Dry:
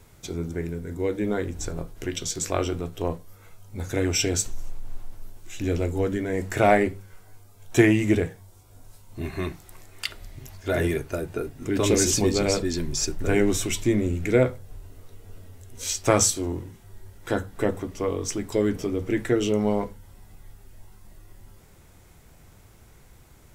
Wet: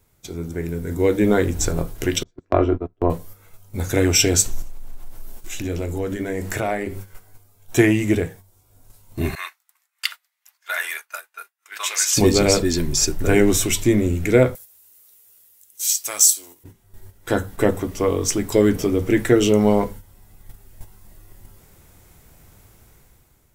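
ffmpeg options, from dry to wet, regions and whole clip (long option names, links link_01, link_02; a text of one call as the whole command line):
ffmpeg -i in.wav -filter_complex "[0:a]asettb=1/sr,asplit=3[link_01][link_02][link_03];[link_01]atrim=end=2.234[link_04];[link_02]atrim=start=2.23:end=3.1,asetpts=PTS-STARTPTS,afade=type=in:duration=0.004:curve=qsin,afade=type=out:start_time=0.866:duration=0.004:curve=qsin,lowpass=1300,aecho=1:1:3:0.39,atrim=end_sample=38367,agate=range=-26dB:threshold=-29dB:ratio=16:release=100:detection=peak[link_05];[link_03]atrim=start=3.096[link_06];[link_04][link_05]acrossfade=duration=0.004:curve1=hsin:curve2=qsin[link_07];[link_07][link_06]acrossfade=duration=0.004:curve1=qsin:curve2=hsin,asettb=1/sr,asplit=3[link_08][link_09][link_10];[link_08]atrim=end=4.624[link_11];[link_09]atrim=start=4.62:end=6.97,asetpts=PTS-STARTPTS,afade=type=in:duration=0.004:curve=qsin,afade=type=out:start_time=2.346:duration=0.004:curve=qsin,acompressor=threshold=-35dB:ratio=3:attack=3.2:release=140:knee=1:detection=peak,bandreject=frequency=50:width_type=h:width=6,bandreject=frequency=100:width_type=h:width=6,bandreject=frequency=150:width_type=h:width=6,bandreject=frequency=200:width_type=h:width=6,bandreject=frequency=250:width_type=h:width=6,bandreject=frequency=300:width_type=h:width=6,bandreject=frequency=350:width_type=h:width=6,bandreject=frequency=400:width_type=h:width=6,bandreject=frequency=450:width_type=h:width=6[link_12];[link_10]atrim=start=6.966[link_13];[link_11][link_12]acrossfade=duration=0.004:curve1=hsin:curve2=qsin[link_14];[link_14][link_13]acrossfade=duration=0.004:curve1=qsin:curve2=hsin,asettb=1/sr,asplit=3[link_15][link_16][link_17];[link_15]atrim=end=9.354[link_18];[link_16]atrim=start=9.35:end=12.17,asetpts=PTS-STARTPTS,afade=type=in:duration=0.004:curve=qsin,afade=type=out:start_time=2.816:duration=0.004:curve=qsin,highpass=frequency=1100:width=0.5412,highpass=frequency=1100:width=1.3066,agate=range=-33dB:threshold=-46dB:ratio=3:release=100:detection=peak,highshelf=frequency=2600:gain=-5.5[link_19];[link_17]atrim=start=12.166[link_20];[link_18][link_19]acrossfade=duration=0.004:curve1=hsin:curve2=qsin[link_21];[link_21][link_20]acrossfade=duration=0.004:curve1=qsin:curve2=hsin,asettb=1/sr,asplit=3[link_22][link_23][link_24];[link_22]atrim=end=14.554[link_25];[link_23]atrim=start=14.55:end=16.64,asetpts=PTS-STARTPTS,afade=type=in:duration=0.004:curve=qsin,afade=type=out:start_time=2.086:duration=0.004:curve=qsin,aderivative,acontrast=84[link_26];[link_24]atrim=start=16.636[link_27];[link_25][link_26]acrossfade=duration=0.004:curve1=hsin:curve2=qsin[link_28];[link_28][link_27]acrossfade=duration=0.004:curve1=qsin:curve2=hsin,agate=range=-9dB:threshold=-41dB:ratio=16:detection=peak,highshelf=frequency=12000:gain=12,dynaudnorm=framelen=310:gausssize=5:maxgain=11.5dB,volume=-1dB" out.wav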